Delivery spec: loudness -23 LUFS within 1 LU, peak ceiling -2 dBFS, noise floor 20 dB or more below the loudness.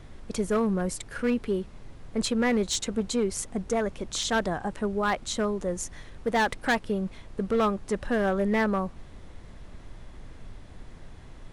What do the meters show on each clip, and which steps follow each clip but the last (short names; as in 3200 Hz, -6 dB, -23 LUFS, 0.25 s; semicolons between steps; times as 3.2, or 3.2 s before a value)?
clipped 1.2%; flat tops at -19.0 dBFS; noise floor -47 dBFS; noise floor target -48 dBFS; loudness -28.0 LUFS; peak -19.0 dBFS; loudness target -23.0 LUFS
-> clip repair -19 dBFS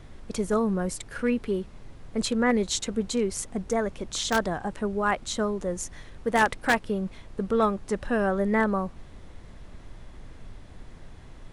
clipped 0.0%; noise floor -47 dBFS; noise floor target -48 dBFS
-> noise print and reduce 6 dB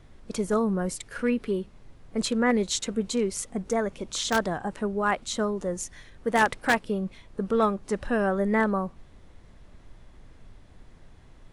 noise floor -52 dBFS; loudness -27.5 LUFS; peak -10.0 dBFS; loudness target -23.0 LUFS
-> gain +4.5 dB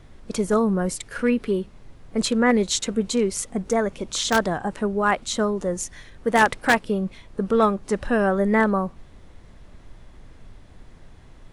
loudness -23.0 LUFS; peak -5.5 dBFS; noise floor -48 dBFS